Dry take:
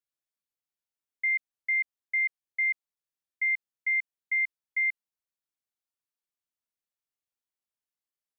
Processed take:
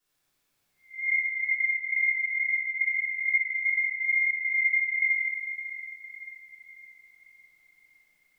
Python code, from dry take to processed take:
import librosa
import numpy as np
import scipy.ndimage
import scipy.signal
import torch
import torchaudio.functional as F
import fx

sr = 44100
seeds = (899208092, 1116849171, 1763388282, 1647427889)

y = fx.spec_blur(x, sr, span_ms=328.0)
y = fx.over_compress(y, sr, threshold_db=-44.0, ratio=-1.0)
y = fx.fixed_phaser(y, sr, hz=2200.0, stages=4, at=(2.7, 3.54))
y = fx.echo_split(y, sr, split_hz=2100.0, low_ms=384, high_ms=560, feedback_pct=52, wet_db=-10)
y = fx.room_shoebox(y, sr, seeds[0], volume_m3=740.0, walls='mixed', distance_m=9.3)